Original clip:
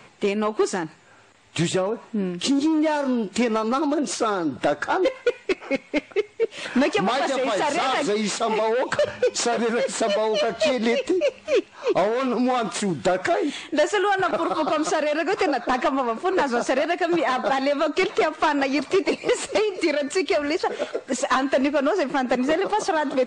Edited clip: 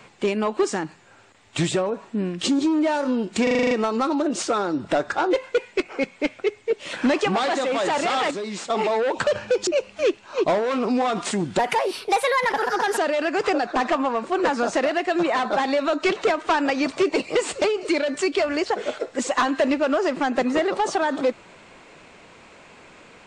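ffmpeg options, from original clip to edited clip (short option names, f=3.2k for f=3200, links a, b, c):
-filter_complex "[0:a]asplit=13[a][b][c][d][e][f][g][h][i][j][k][l][m];[a]atrim=end=3.472[n];[b]atrim=start=3.428:end=3.472[o];[c]atrim=start=3.428:end=3.472[p];[d]atrim=start=3.428:end=3.472[q];[e]atrim=start=3.428:end=3.472[r];[f]atrim=start=3.428:end=3.472[s];[g]atrim=start=3.428:end=3.472[t];[h]atrim=start=3.428:end=8.032[u];[i]atrim=start=8.028:end=8.422,asetpts=PTS-STARTPTS,volume=-7dB[v];[j]atrim=start=8.418:end=9.392[w];[k]atrim=start=11.158:end=13.084[x];[l]atrim=start=13.08:end=14.91,asetpts=PTS-STARTPTS,asetrate=58212,aresample=44100[y];[m]atrim=start=14.906[z];[n][o]acrossfade=d=0.004:c1=hsin:c2=hsin[aa];[aa][p]acrossfade=d=0.004:c1=hsin:c2=hsin[ab];[ab][q]acrossfade=d=0.004:c1=hsin:c2=hsin[ac];[ac][r]acrossfade=d=0.004:c1=hsin:c2=hsin[ad];[ad][s]acrossfade=d=0.004:c1=hsin:c2=hsin[ae];[ae][t]acrossfade=d=0.004:c1=hsin:c2=hsin[af];[af][u]acrossfade=d=0.004:c1=hsin:c2=hsin[ag];[ag][v]acrossfade=d=0.004:c1=hsin:c2=hsin[ah];[ah][w]acrossfade=d=0.004:c1=hsin:c2=hsin[ai];[ai][x]acrossfade=d=0.004:c1=hsin:c2=hsin[aj];[aj][y]acrossfade=d=0.004:c1=hsin:c2=hsin[ak];[ak][z]acrossfade=d=0.004:c1=hsin:c2=hsin"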